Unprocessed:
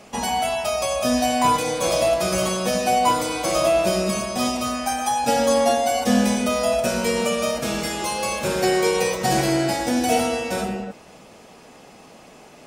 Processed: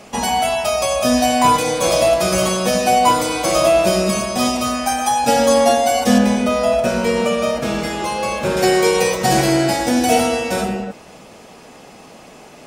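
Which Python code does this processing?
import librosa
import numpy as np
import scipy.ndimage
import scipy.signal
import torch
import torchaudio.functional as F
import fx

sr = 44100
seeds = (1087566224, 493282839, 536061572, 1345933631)

y = fx.high_shelf(x, sr, hz=4300.0, db=-10.5, at=(6.18, 8.57))
y = y * librosa.db_to_amplitude(5.0)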